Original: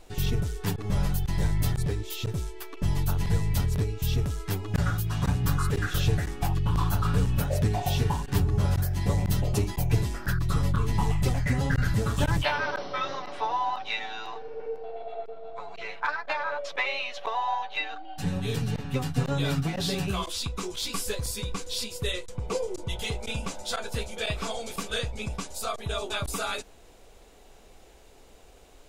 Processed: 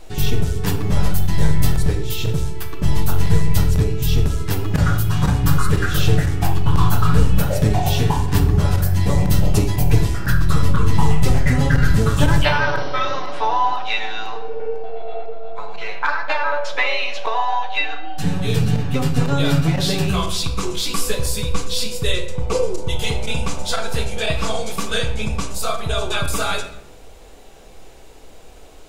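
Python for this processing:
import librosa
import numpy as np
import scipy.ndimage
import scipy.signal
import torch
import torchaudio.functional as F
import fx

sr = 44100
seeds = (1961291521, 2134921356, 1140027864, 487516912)

y = fx.room_shoebox(x, sr, seeds[0], volume_m3=240.0, walls='mixed', distance_m=0.58)
y = F.gain(torch.from_numpy(y), 7.5).numpy()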